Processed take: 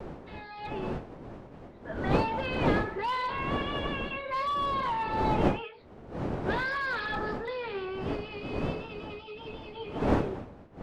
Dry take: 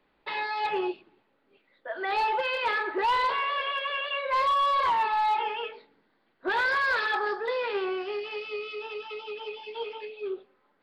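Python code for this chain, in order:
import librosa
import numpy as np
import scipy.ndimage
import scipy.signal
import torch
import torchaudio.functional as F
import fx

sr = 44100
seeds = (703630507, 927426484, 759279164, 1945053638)

y = fx.fade_in_head(x, sr, length_s=1.16)
y = fx.dmg_wind(y, sr, seeds[0], corner_hz=470.0, level_db=-28.0)
y = fx.vibrato(y, sr, rate_hz=1.4, depth_cents=43.0)
y = y * 10.0 ** (-6.0 / 20.0)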